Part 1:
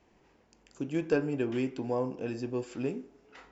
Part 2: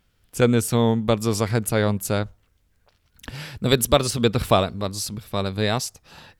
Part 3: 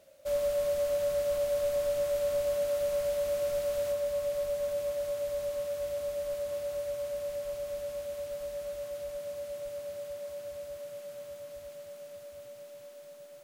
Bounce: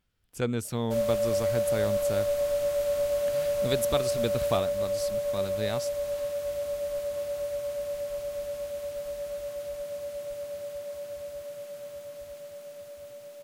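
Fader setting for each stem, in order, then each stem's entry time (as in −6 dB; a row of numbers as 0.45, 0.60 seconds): muted, −11.0 dB, +2.5 dB; muted, 0.00 s, 0.65 s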